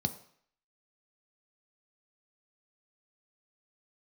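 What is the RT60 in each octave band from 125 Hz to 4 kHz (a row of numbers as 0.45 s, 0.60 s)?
0.50 s, 0.50 s, 0.55 s, 0.60 s, 0.65 s, 0.60 s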